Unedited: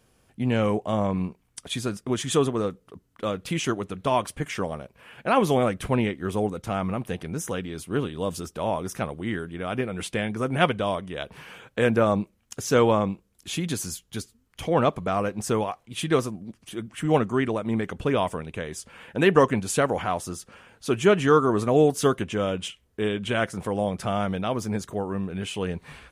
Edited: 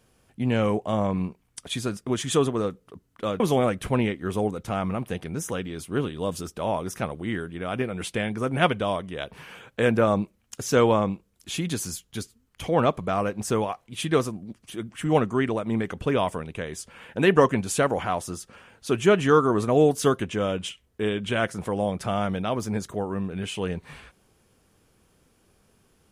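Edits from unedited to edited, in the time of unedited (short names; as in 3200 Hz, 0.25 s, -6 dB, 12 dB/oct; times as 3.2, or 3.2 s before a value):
3.4–5.39 cut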